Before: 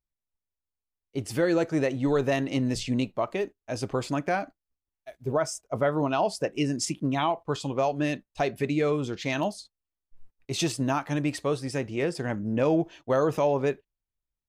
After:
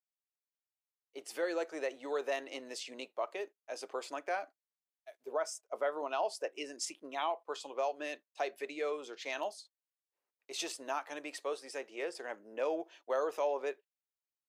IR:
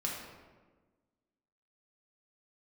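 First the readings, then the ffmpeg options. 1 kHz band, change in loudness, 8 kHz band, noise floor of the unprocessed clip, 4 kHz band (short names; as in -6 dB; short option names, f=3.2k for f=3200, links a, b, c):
-8.0 dB, -10.5 dB, -8.0 dB, under -85 dBFS, -8.0 dB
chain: -af "highpass=f=420:w=0.5412,highpass=f=420:w=1.3066,volume=-8dB"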